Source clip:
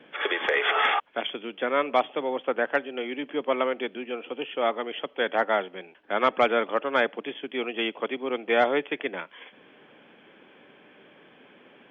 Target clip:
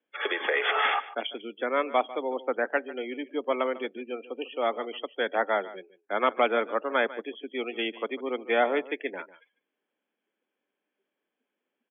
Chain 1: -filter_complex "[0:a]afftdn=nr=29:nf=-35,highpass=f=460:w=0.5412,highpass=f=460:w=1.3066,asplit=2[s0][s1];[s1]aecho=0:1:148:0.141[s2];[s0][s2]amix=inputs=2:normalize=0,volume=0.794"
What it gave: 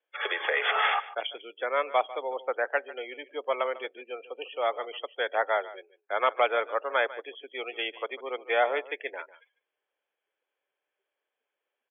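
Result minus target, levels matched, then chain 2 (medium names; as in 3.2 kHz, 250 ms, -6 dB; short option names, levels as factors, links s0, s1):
250 Hz band -12.5 dB
-filter_complex "[0:a]afftdn=nr=29:nf=-35,highpass=f=200:w=0.5412,highpass=f=200:w=1.3066,asplit=2[s0][s1];[s1]aecho=0:1:148:0.141[s2];[s0][s2]amix=inputs=2:normalize=0,volume=0.794"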